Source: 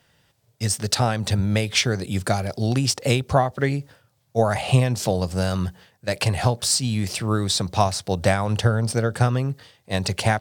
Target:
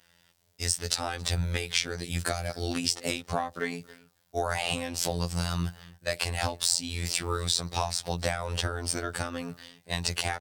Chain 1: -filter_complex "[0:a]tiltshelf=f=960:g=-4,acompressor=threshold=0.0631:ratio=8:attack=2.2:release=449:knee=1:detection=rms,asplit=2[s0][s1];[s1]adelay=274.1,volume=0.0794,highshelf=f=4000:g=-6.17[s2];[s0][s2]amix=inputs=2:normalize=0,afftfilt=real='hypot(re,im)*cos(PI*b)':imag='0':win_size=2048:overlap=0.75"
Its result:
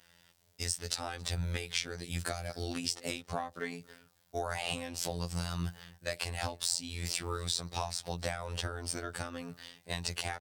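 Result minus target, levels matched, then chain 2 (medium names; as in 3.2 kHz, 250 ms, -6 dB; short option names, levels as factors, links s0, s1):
compression: peak gain reduction +6.5 dB
-filter_complex "[0:a]tiltshelf=f=960:g=-4,acompressor=threshold=0.15:ratio=8:attack=2.2:release=449:knee=1:detection=rms,asplit=2[s0][s1];[s1]adelay=274.1,volume=0.0794,highshelf=f=4000:g=-6.17[s2];[s0][s2]amix=inputs=2:normalize=0,afftfilt=real='hypot(re,im)*cos(PI*b)':imag='0':win_size=2048:overlap=0.75"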